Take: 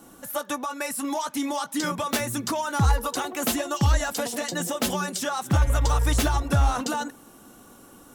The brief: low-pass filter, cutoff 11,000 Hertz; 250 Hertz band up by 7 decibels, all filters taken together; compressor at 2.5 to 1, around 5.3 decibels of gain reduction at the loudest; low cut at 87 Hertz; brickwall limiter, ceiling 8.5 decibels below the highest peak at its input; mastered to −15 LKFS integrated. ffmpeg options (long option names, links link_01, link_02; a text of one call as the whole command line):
ffmpeg -i in.wav -af "highpass=87,lowpass=11000,equalizer=frequency=250:width_type=o:gain=8.5,acompressor=threshold=-23dB:ratio=2.5,volume=14.5dB,alimiter=limit=-5.5dB:level=0:latency=1" out.wav